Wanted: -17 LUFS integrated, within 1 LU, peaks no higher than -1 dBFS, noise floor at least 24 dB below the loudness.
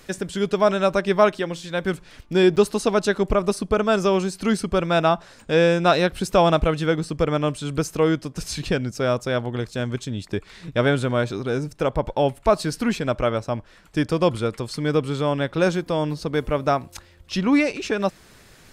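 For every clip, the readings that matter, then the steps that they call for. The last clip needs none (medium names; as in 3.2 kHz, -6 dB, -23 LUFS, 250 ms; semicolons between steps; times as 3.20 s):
dropouts 1; longest dropout 7.9 ms; loudness -22.5 LUFS; peak level -3.5 dBFS; loudness target -17.0 LUFS
-> interpolate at 2.56 s, 7.9 ms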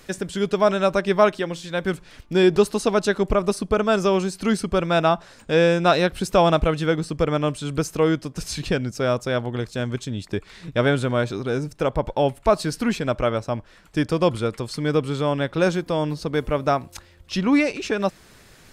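dropouts 0; loudness -22.5 LUFS; peak level -3.5 dBFS; loudness target -17.0 LUFS
-> trim +5.5 dB; peak limiter -1 dBFS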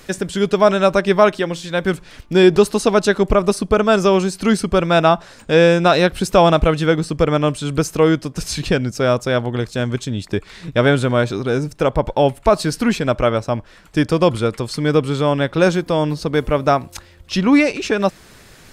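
loudness -17.0 LUFS; peak level -1.0 dBFS; noise floor -45 dBFS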